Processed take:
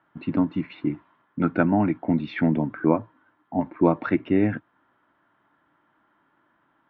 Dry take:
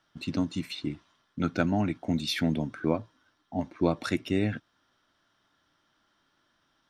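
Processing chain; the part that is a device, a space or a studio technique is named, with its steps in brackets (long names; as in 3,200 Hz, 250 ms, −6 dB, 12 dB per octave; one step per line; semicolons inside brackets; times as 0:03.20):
bass cabinet (loudspeaker in its box 68–2,200 Hz, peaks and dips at 84 Hz −9 dB, 310 Hz +4 dB, 940 Hz +6 dB)
level +5 dB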